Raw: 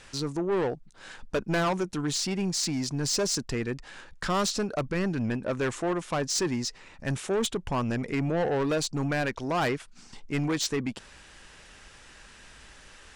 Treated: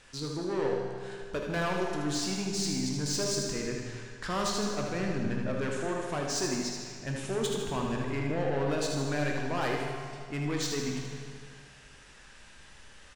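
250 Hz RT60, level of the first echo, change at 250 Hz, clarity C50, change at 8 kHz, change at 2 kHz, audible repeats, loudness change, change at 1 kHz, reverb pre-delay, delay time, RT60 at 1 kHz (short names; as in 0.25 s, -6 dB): 2.1 s, -6.5 dB, -3.0 dB, 0.5 dB, -3.0 dB, -2.5 dB, 2, -3.0 dB, -3.0 dB, 15 ms, 78 ms, 2.1 s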